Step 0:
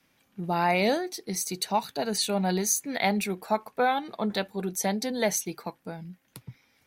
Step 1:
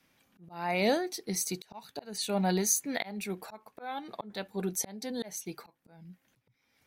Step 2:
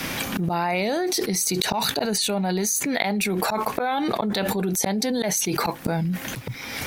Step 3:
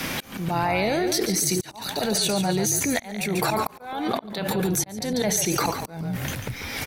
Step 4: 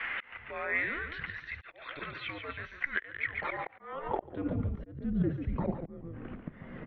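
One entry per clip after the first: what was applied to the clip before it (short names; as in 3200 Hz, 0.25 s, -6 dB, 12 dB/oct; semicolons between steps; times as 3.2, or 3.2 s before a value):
auto swell 0.416 s; gain -1.5 dB
fast leveller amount 100%
frequency-shifting echo 0.142 s, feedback 42%, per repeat -41 Hz, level -8 dB; auto swell 0.38 s
band-pass sweep 2200 Hz -> 490 Hz, 3.74–4.59; mistuned SSB -290 Hz 180–3200 Hz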